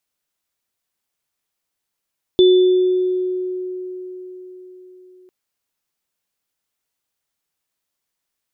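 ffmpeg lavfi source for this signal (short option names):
-f lavfi -i "aevalsrc='0.447*pow(10,-3*t/4.54)*sin(2*PI*367*t)+0.119*pow(10,-3*t/1.16)*sin(2*PI*3500*t)':d=2.9:s=44100"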